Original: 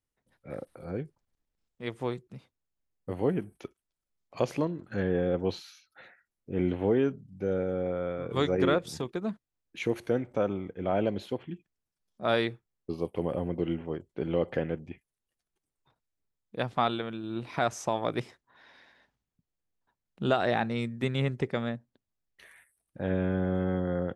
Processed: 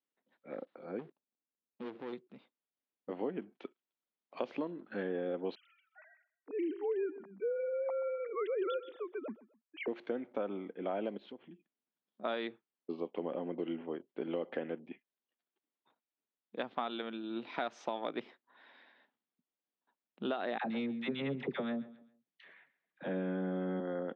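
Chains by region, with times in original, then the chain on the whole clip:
0:00.99–0:02.13: running median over 41 samples + downward compressor 4 to 1, threshold −41 dBFS + leveller curve on the samples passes 3
0:05.55–0:09.88: three sine waves on the formant tracks + repeating echo 128 ms, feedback 29%, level −19 dB
0:11.17–0:12.24: low-shelf EQ 260 Hz +9 dB + downward compressor 2.5 to 1, threshold −47 dBFS
0:16.90–0:18.09: high-pass filter 41 Hz + high-shelf EQ 5,500 Hz +11 dB + notch filter 1,100 Hz, Q 16
0:20.58–0:23.80: parametric band 150 Hz +10.5 dB 0.87 octaves + all-pass dispersion lows, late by 67 ms, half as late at 770 Hz + repeating echo 133 ms, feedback 33%, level −19.5 dB
whole clip: Chebyshev band-pass filter 230–3,600 Hz, order 3; downward compressor, threshold −29 dBFS; level −3 dB

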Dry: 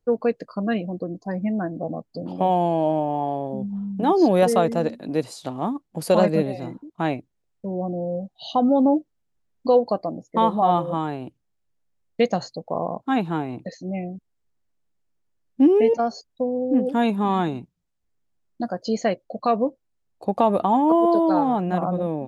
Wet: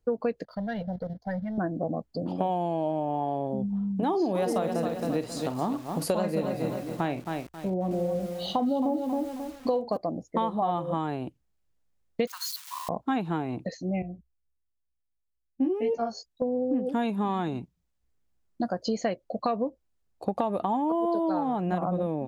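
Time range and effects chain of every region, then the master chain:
0:00.44–0:01.58: leveller curve on the samples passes 1 + output level in coarse steps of 9 dB + phaser with its sweep stopped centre 1,700 Hz, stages 8
0:04.08–0:09.97: double-tracking delay 48 ms −12.5 dB + feedback echo at a low word length 269 ms, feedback 35%, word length 7 bits, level −8 dB
0:12.27–0:12.89: spike at every zero crossing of −26 dBFS + Chebyshev high-pass with heavy ripple 950 Hz, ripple 3 dB
0:14.02–0:16.42: chorus effect 2.1 Hz, delay 15.5 ms, depth 3.8 ms + multiband upward and downward expander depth 40%
whole clip: parametric band 60 Hz +11.5 dB 0.43 octaves; downward compressor, threshold −24 dBFS

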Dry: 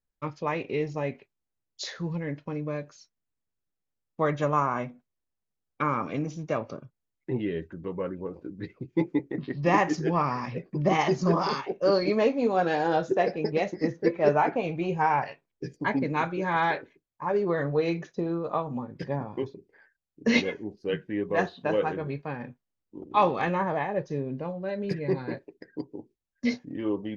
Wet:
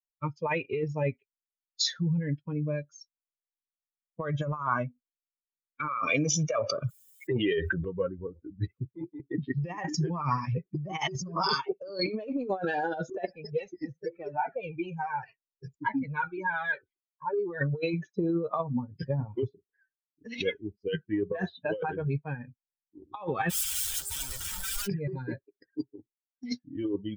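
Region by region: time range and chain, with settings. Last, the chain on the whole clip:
0:05.88–0:07.85: high-pass filter 500 Hz 6 dB per octave + comb filter 1.7 ms, depth 30% + envelope flattener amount 70%
0:13.25–0:17.61: downward compressor 5 to 1, threshold −24 dBFS + flanger whose copies keep moving one way falling 1.9 Hz
0:23.49–0:24.86: hum with harmonics 400 Hz, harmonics 11, −42 dBFS −2 dB per octave + wrap-around overflow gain 32.5 dB
whole clip: spectral dynamics exaggerated over time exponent 2; compressor whose output falls as the input rises −39 dBFS, ratio −1; level +8.5 dB

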